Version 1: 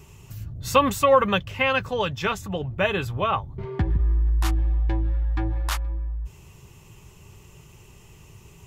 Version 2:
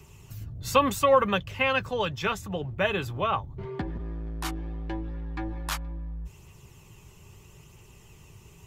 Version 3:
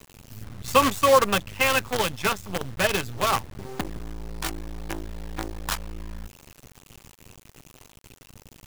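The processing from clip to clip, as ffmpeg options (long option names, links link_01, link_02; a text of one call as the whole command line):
ffmpeg -i in.wav -filter_complex "[0:a]acrossover=split=190|890|1900[link_01][link_02][link_03][link_04];[link_01]volume=31dB,asoftclip=hard,volume=-31dB[link_05];[link_04]aphaser=in_gain=1:out_gain=1:delay=1.5:decay=0.35:speed=0.77:type=triangular[link_06];[link_05][link_02][link_03][link_06]amix=inputs=4:normalize=0,volume=-3dB" out.wav
ffmpeg -i in.wav -af "bandreject=frequency=580:width=18,acrusher=bits=5:dc=4:mix=0:aa=0.000001,volume=3dB" out.wav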